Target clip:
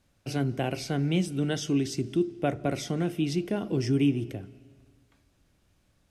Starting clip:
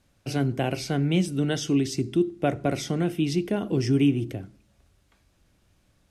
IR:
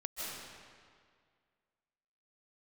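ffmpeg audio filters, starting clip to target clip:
-filter_complex "[0:a]asplit=2[a][b];[1:a]atrim=start_sample=2205,adelay=13[c];[b][c]afir=irnorm=-1:irlink=0,volume=-23dB[d];[a][d]amix=inputs=2:normalize=0,volume=-3dB"

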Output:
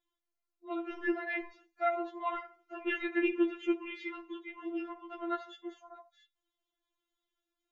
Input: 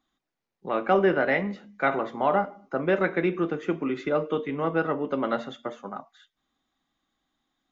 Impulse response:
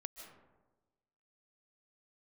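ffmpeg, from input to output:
-filter_complex "[0:a]asettb=1/sr,asplit=3[a][b][c];[a]atrim=end=2.284[d];[b]atrim=start=2.28:end=4.08,asetpts=PTS-STARTPTS,afade=t=in:d=0.004:c=qsin,afade=t=out:st=1.796:d=0.004:c=qsin,equalizer=f=2.8k:t=o:w=0.82:g=12[e];[c]atrim=start=4.076[f];[d][e]acrossfade=d=0.004:c1=hsin:c2=qsin[g];[g][f]acrossfade=d=0.004:c1=qsin:c2=hsin,acrossover=split=200[h][i];[h]aeval=exprs='clip(val(0),-1,0.0141)':c=same[j];[j][i]amix=inputs=2:normalize=0,afftfilt=real='re*4*eq(mod(b,16),0)':imag='im*4*eq(mod(b,16),0)':win_size=2048:overlap=0.75,volume=-8dB"

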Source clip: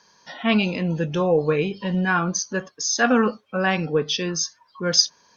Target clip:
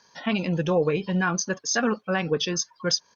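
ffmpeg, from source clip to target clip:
-af "alimiter=limit=-10.5dB:level=0:latency=1:release=373,atempo=1.7,volume=-1dB"

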